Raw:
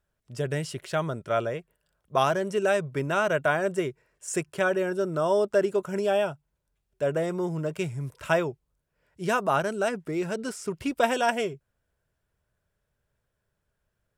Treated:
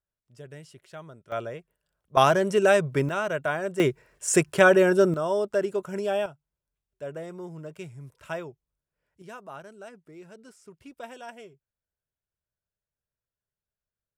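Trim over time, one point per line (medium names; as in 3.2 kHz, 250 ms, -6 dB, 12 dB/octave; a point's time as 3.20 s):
-15 dB
from 1.32 s -5.5 dB
from 2.17 s +4.5 dB
from 3.09 s -3.5 dB
from 3.80 s +8 dB
from 5.14 s -2.5 dB
from 6.26 s -10 dB
from 9.22 s -17.5 dB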